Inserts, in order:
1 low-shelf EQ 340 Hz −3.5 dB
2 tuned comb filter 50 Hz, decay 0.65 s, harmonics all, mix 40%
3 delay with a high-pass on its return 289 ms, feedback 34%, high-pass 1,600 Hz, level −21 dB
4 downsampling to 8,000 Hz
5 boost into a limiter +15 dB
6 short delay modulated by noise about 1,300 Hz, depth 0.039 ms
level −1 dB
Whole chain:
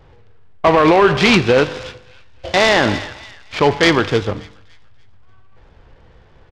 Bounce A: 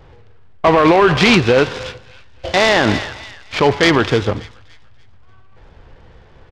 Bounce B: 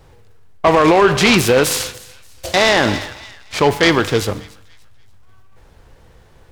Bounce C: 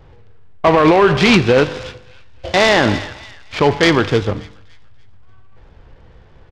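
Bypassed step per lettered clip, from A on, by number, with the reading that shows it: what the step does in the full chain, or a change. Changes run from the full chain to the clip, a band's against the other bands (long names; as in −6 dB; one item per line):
2, change in momentary loudness spread +1 LU
4, 8 kHz band +9.0 dB
1, 125 Hz band +2.5 dB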